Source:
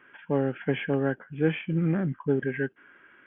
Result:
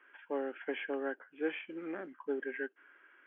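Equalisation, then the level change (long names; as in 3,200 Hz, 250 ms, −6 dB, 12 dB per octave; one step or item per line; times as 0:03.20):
Butterworth high-pass 280 Hz 36 dB per octave
tilt shelving filter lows −5.5 dB, about 940 Hz
high-shelf EQ 2,100 Hz −10.5 dB
−5.0 dB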